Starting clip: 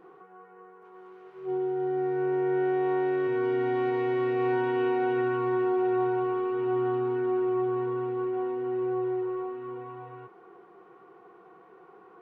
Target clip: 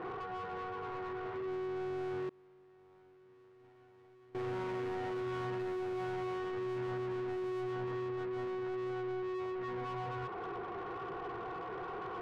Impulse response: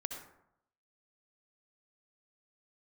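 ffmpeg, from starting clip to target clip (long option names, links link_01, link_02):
-filter_complex "[0:a]lowpass=2400,asoftclip=type=hard:threshold=-25dB,acompressor=threshold=-47dB:ratio=2.5,asplit=2[link_01][link_02];[link_02]highpass=frequency=720:poles=1,volume=27dB,asoftclip=type=tanh:threshold=-33dB[link_03];[link_01][link_03]amix=inputs=2:normalize=0,lowpass=frequency=1900:poles=1,volume=-6dB,equalizer=frequency=120:width_type=o:width=0.73:gain=11,asettb=1/sr,asplit=3[link_04][link_05][link_06];[link_04]atrim=end=2.294[link_07];[link_05]atrim=start=2.29:end=4.35,asetpts=PTS-STARTPTS,afade=type=in:duration=0.004:curve=qsin,afade=type=out:start_time=2.056:duration=0.004:curve=qsin,agate=range=-33dB:threshold=-23dB:ratio=3:detection=peak[link_08];[link_06]atrim=start=4.346[link_09];[link_07][link_08]acrossfade=duration=0.004:curve1=hsin:curve2=qsin[link_10];[link_10][link_09]acrossfade=duration=0.004:curve1=qsin:curve2=hsin"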